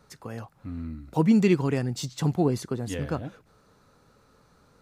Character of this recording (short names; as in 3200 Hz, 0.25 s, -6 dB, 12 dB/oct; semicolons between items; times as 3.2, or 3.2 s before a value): noise floor -62 dBFS; spectral tilt -7.0 dB/oct